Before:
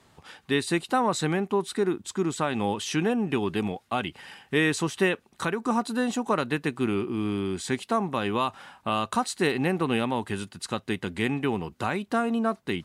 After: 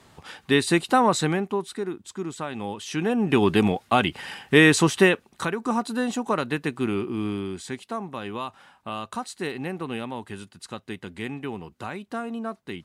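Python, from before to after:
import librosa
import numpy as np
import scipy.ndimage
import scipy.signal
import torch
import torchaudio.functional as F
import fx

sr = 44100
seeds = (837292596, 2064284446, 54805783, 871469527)

y = fx.gain(x, sr, db=fx.line((1.09, 5.0), (1.84, -5.0), (2.81, -5.0), (3.42, 8.0), (4.89, 8.0), (5.51, 0.5), (7.25, 0.5), (7.77, -6.0)))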